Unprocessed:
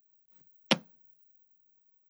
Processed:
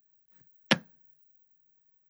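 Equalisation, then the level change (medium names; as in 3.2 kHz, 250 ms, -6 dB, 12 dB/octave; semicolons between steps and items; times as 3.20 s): peaking EQ 92 Hz +13.5 dB 0.9 oct; peaking EQ 1.7 kHz +12.5 dB 0.33 oct; 0.0 dB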